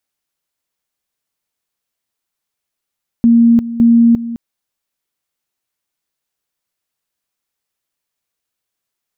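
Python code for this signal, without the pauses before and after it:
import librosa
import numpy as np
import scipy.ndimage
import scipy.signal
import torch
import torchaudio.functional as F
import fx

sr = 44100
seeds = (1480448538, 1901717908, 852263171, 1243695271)

y = fx.two_level_tone(sr, hz=233.0, level_db=-5.0, drop_db=14.5, high_s=0.35, low_s=0.21, rounds=2)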